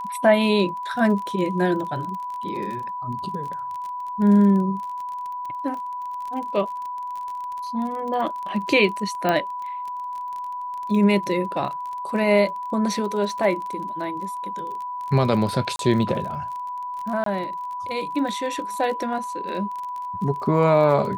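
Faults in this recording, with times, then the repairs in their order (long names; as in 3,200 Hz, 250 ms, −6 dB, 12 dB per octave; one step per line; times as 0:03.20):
surface crackle 28 per second −30 dBFS
whistle 990 Hz −28 dBFS
0:09.29: click −9 dBFS
0:15.76–0:15.79: drop-out 32 ms
0:17.24–0:17.26: drop-out 23 ms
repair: click removal
notch filter 990 Hz, Q 30
repair the gap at 0:15.76, 32 ms
repair the gap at 0:17.24, 23 ms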